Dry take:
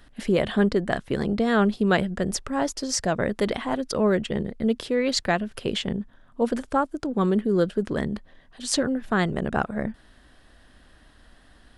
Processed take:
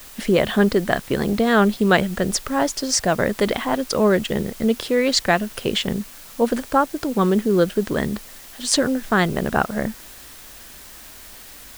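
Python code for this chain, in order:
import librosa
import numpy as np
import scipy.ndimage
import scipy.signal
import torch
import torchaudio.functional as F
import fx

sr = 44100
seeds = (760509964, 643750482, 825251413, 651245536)

p1 = fx.low_shelf(x, sr, hz=450.0, db=-3.5)
p2 = fx.quant_dither(p1, sr, seeds[0], bits=6, dither='triangular')
p3 = p1 + (p2 * librosa.db_to_amplitude(-10.0))
y = p3 * librosa.db_to_amplitude(4.0)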